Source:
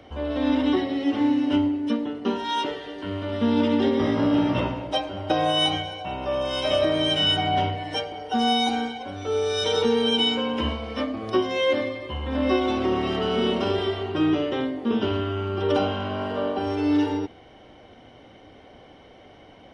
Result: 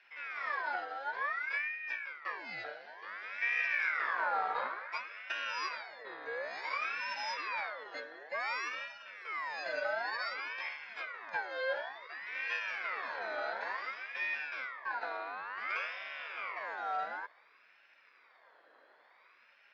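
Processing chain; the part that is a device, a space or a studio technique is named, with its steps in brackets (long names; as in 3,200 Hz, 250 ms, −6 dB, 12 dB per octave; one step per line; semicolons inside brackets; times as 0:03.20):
0:03.38–0:05.10: low-shelf EQ 220 Hz +7.5 dB
low-pass filter 5,500 Hz 24 dB per octave
voice changer toy (ring modulator whose carrier an LFO sweeps 1,600 Hz, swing 35%, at 0.56 Hz; loudspeaker in its box 520–4,600 Hz, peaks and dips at 530 Hz +4 dB, 840 Hz −4 dB, 1,300 Hz −4 dB, 1,900 Hz −3 dB, 2,900 Hz −7 dB, 4,300 Hz −7 dB)
level −8.5 dB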